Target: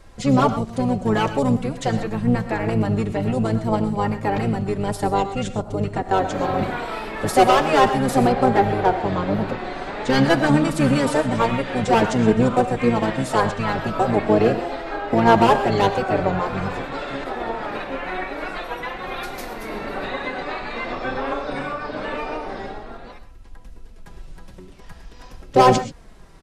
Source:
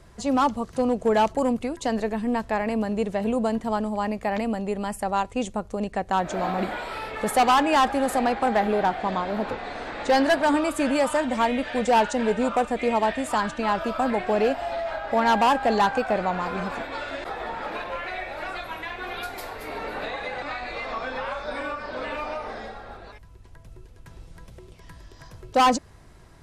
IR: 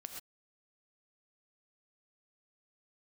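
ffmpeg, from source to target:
-filter_complex "[0:a]flanger=delay=3.7:depth=1.7:regen=5:speed=0.47:shape=sinusoidal,asplit=3[s0][s1][s2];[s1]asetrate=22050,aresample=44100,atempo=2,volume=0.708[s3];[s2]asetrate=33038,aresample=44100,atempo=1.33484,volume=0.447[s4];[s0][s3][s4]amix=inputs=3:normalize=0,asplit=2[s5][s6];[1:a]atrim=start_sample=2205[s7];[s6][s7]afir=irnorm=-1:irlink=0,volume=1.26[s8];[s5][s8]amix=inputs=2:normalize=0"

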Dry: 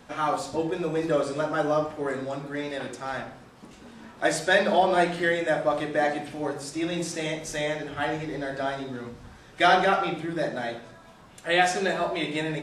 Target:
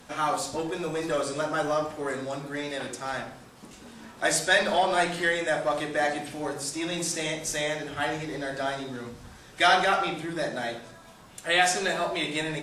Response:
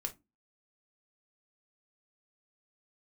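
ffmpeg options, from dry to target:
-filter_complex "[0:a]aemphasis=mode=production:type=cd,acrossover=split=660[s0][s1];[s0]asoftclip=type=tanh:threshold=0.0376[s2];[s2][s1]amix=inputs=2:normalize=0"

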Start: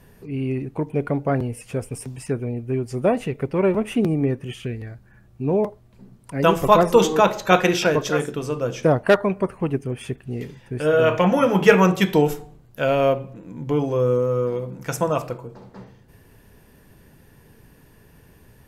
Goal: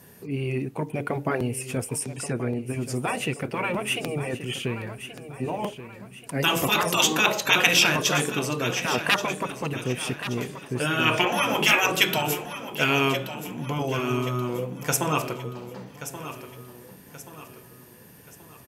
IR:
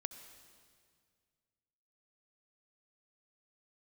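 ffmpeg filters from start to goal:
-filter_complex "[0:a]highpass=120,aemphasis=mode=production:type=cd,asettb=1/sr,asplit=3[s0][s1][s2];[s0]atrim=end=2.004[s3];[s1]atrim=start=2:end=2.71,asetpts=PTS-STARTPTS,afade=t=in:d=0.004:c=qsin,afade=t=out:st=0.706:d=0.004:c=qsin,lowpass=10000[s4];[s2]atrim=start=2.706[s5];[s3][s4]acrossfade=d=0.004:c1=hsin:c2=qsin[s6];[s6][s5]acrossfade=d=0.004:c1=qsin:c2=hsin,afftfilt=real='re*lt(hypot(re,im),0.501)':imag='im*lt(hypot(re,im),0.501)':win_size=1024:overlap=0.75,adynamicequalizer=threshold=0.00708:dfrequency=2700:dqfactor=2.1:tfrequency=2700:tqfactor=2.1:attack=5:release=100:ratio=0.375:range=3.5:mode=boostabove:tftype=bell,aecho=1:1:1129|2258|3387|4516:0.251|0.105|0.0443|0.0186,volume=1.12"

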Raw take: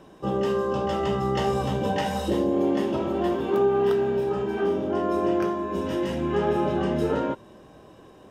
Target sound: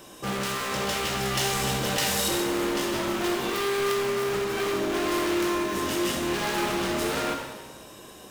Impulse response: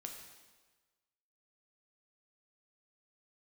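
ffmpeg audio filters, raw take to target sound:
-filter_complex "[0:a]volume=28.2,asoftclip=hard,volume=0.0355,crystalizer=i=8:c=0[s0];[1:a]atrim=start_sample=2205[s1];[s0][s1]afir=irnorm=-1:irlink=0,volume=1.58"

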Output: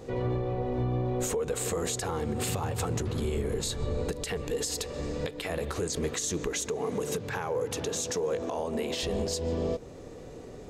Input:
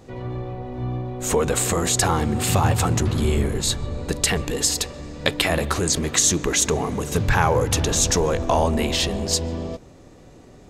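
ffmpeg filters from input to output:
-filter_complex "[0:a]equalizer=f=460:t=o:w=0.41:g=9.5,acompressor=threshold=0.0708:ratio=6,alimiter=limit=0.0891:level=0:latency=1:release=221,asettb=1/sr,asplit=3[s0][s1][s2];[s0]atrim=end=6.694[s3];[s1]atrim=start=6.69:end=9.03,asetpts=PTS-STARTPTS,afade=t=in:d=0.004:c=qsin,afade=t=out:st=2.336:d=0.004:c=qsin,highpass=140[s4];[s2]atrim=start=9.026[s5];[s3][s4]acrossfade=d=0.004:c1=hsin:c2=qsin[s6];[s6][s5]acrossfade=d=0.004:c1=qsin:c2=hsin"

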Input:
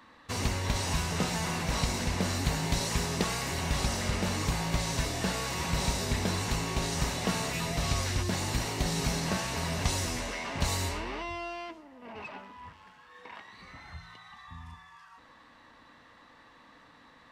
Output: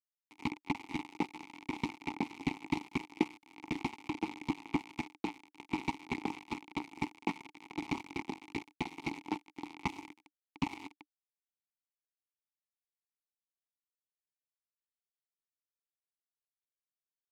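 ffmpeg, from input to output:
-filter_complex "[0:a]aeval=exprs='0.237*(cos(1*acos(clip(val(0)/0.237,-1,1)))-cos(1*PI/2))+0.00188*(cos(5*acos(clip(val(0)/0.237,-1,1)))-cos(5*PI/2))+0.00299*(cos(6*acos(clip(val(0)/0.237,-1,1)))-cos(6*PI/2))+0.0376*(cos(7*acos(clip(val(0)/0.237,-1,1)))-cos(7*PI/2))':c=same,aeval=exprs='val(0)*gte(abs(val(0)),0.0299)':c=same,asplit=3[s0][s1][s2];[s0]bandpass=f=300:t=q:w=8,volume=1[s3];[s1]bandpass=f=870:t=q:w=8,volume=0.501[s4];[s2]bandpass=f=2240:t=q:w=8,volume=0.355[s5];[s3][s4][s5]amix=inputs=3:normalize=0,volume=4.22"

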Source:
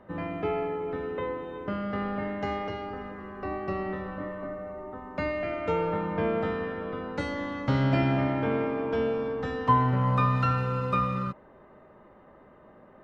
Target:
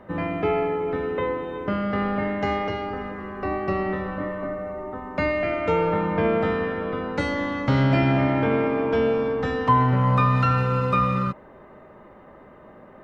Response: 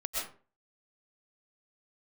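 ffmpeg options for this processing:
-filter_complex "[0:a]equalizer=f=2200:w=4.3:g=2.5,asplit=2[s0][s1];[s1]alimiter=limit=0.1:level=0:latency=1,volume=1.12[s2];[s0][s2]amix=inputs=2:normalize=0"

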